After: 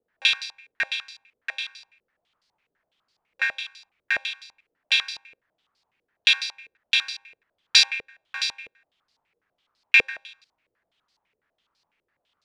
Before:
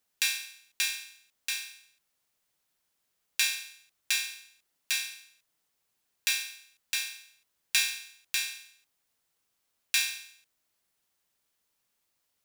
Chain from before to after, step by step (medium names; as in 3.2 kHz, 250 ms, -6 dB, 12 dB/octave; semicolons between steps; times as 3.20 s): step-sequenced low-pass 12 Hz 470–4600 Hz; trim +5 dB